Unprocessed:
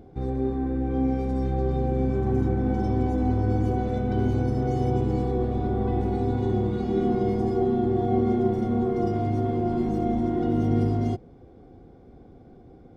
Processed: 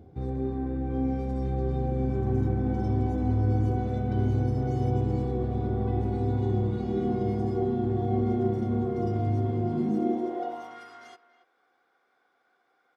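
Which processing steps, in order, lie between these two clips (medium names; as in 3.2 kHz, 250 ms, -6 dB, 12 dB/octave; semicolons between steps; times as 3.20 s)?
speakerphone echo 280 ms, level -14 dB; high-pass sweep 83 Hz -> 1.4 kHz, 9.52–10.81 s; trim -5 dB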